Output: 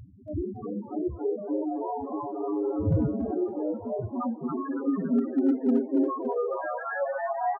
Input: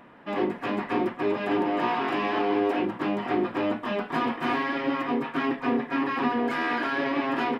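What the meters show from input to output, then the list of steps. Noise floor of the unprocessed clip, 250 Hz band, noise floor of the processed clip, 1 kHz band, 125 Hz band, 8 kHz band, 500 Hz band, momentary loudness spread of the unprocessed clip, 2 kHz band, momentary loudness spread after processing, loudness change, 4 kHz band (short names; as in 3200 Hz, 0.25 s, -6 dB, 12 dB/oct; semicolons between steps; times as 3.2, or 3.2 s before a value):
-43 dBFS, 0.0 dB, -42 dBFS, -6.0 dB, +7.5 dB, n/a, -1.0 dB, 3 LU, under -10 dB, 9 LU, -2.0 dB, under -35 dB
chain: wind noise 510 Hz -30 dBFS; high-pass sweep 73 Hz -> 650 Hz, 3.34–7.29; loudest bins only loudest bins 2; hard clip -17.5 dBFS, distortion -31 dB; frequency-shifting echo 0.281 s, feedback 46%, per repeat +130 Hz, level -7.5 dB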